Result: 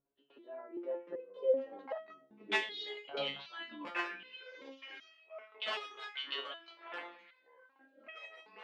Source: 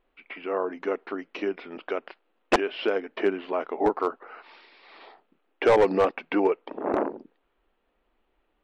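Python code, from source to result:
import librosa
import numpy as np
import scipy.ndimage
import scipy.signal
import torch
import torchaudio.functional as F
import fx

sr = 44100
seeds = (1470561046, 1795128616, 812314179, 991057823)

p1 = fx.pitch_heads(x, sr, semitones=5.0)
p2 = fx.rider(p1, sr, range_db=5, speed_s=0.5)
p3 = p1 + F.gain(torch.from_numpy(p2), -3.0).numpy()
p4 = fx.hum_notches(p3, sr, base_hz=60, count=6)
p5 = fx.filter_sweep_bandpass(p4, sr, from_hz=220.0, to_hz=3300.0, start_s=1.03, end_s=2.71, q=2.1)
p6 = fx.echo_pitch(p5, sr, ms=587, semitones=-5, count=2, db_per_echo=-6.0)
p7 = fx.resonator_held(p6, sr, hz=2.6, low_hz=140.0, high_hz=640.0)
y = F.gain(torch.from_numpy(p7), 6.0).numpy()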